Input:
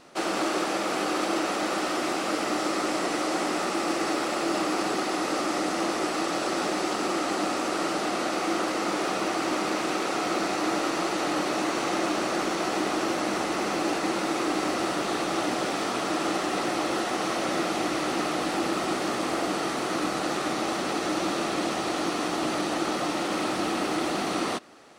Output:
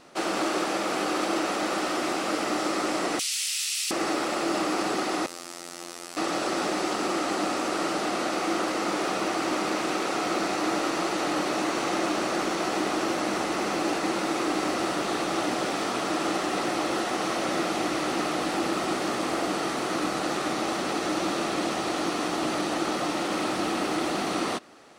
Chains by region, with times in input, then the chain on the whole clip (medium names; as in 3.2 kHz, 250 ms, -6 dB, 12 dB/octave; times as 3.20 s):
3.19–3.91 s: Chebyshev high-pass 2.7 kHz, order 3 + tilt EQ +4 dB/octave
5.26–6.17 s: pre-emphasis filter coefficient 0.8 + robot voice 86.5 Hz
whole clip: none